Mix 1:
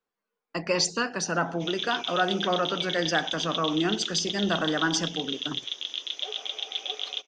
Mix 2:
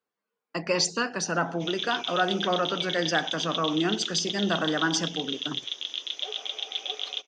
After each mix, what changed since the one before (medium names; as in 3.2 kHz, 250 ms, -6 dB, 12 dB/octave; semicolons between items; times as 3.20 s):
master: add high-pass 72 Hz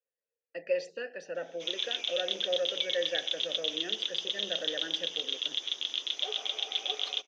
speech: add vowel filter e